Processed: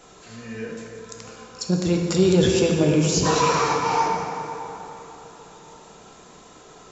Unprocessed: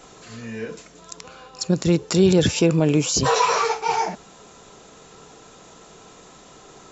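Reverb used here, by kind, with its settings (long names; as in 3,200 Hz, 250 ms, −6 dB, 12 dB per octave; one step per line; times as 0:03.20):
dense smooth reverb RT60 3.7 s, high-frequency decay 0.55×, DRR 0 dB
level −3.5 dB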